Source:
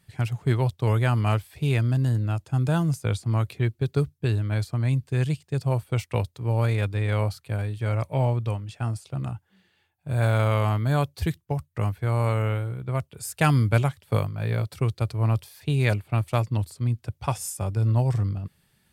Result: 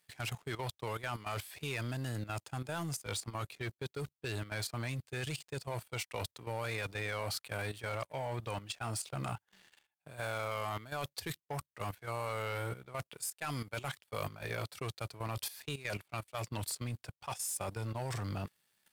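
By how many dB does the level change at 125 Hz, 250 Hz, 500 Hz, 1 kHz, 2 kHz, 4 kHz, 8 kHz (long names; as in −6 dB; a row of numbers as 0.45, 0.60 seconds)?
−18.5, −15.5, −11.0, −9.0, −7.0, −3.0, −1.5 decibels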